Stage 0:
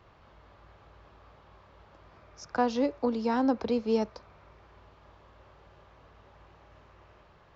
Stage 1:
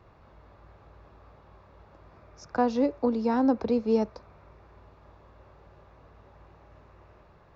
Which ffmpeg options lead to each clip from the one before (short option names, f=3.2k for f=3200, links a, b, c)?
-af "tiltshelf=f=1.1k:g=3.5,bandreject=f=3.1k:w=10"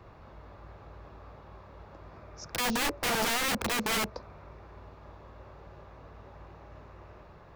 -filter_complex "[0:a]acrossover=split=420[a][b];[b]acompressor=threshold=-34dB:ratio=4[c];[a][c]amix=inputs=2:normalize=0,aeval=exprs='(mod(26.6*val(0)+1,2)-1)/26.6':c=same,volume=4.5dB"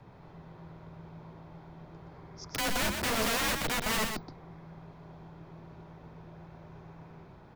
-af "afreqshift=-220,aecho=1:1:123:0.531,volume=-1.5dB"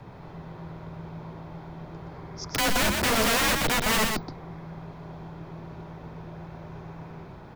-af "asoftclip=type=tanh:threshold=-24.5dB,volume=8.5dB"